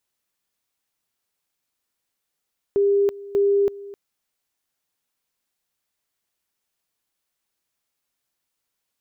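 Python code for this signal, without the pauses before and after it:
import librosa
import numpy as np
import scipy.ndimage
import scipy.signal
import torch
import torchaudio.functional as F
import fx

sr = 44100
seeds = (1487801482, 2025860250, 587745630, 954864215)

y = fx.two_level_tone(sr, hz=401.0, level_db=-15.0, drop_db=19.0, high_s=0.33, low_s=0.26, rounds=2)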